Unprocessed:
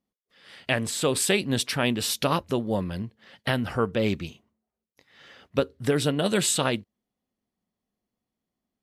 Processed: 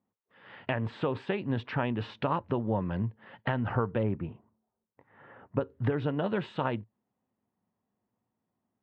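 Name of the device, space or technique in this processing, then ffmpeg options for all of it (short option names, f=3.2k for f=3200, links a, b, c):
bass amplifier: -filter_complex "[0:a]acompressor=threshold=-29dB:ratio=5,highpass=87,equalizer=f=110:t=q:w=4:g=8,equalizer=f=920:t=q:w=4:g=7,equalizer=f=2.2k:t=q:w=4:g=-5,lowpass=f=2.4k:w=0.5412,lowpass=f=2.4k:w=1.3066,asettb=1/sr,asplit=3[a][b][c];[a]atrim=end=4.034[d];[b]atrim=start=4.03:end=5.61,asetpts=PTS-STARTPTS,afade=t=in:d=0.004:c=qsin,afade=t=out:st=1.576:d=0.004:c=qsin,lowpass=1.5k[e];[c]atrim=start=5.606[f];[d][e]acrossfade=d=0.004:c1=hsin:c2=qsin[g];[g][f]acrossfade=d=0.004:c1=qsin:c2=hsin,volume=2dB"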